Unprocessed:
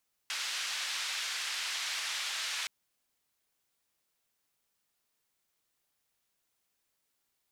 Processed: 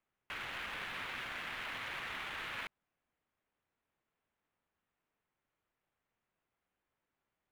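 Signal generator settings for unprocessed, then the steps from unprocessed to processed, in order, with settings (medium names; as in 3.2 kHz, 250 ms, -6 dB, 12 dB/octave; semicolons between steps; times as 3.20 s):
noise band 1.5–4.8 kHz, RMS -36 dBFS 2.37 s
median filter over 9 samples; tone controls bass +2 dB, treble -13 dB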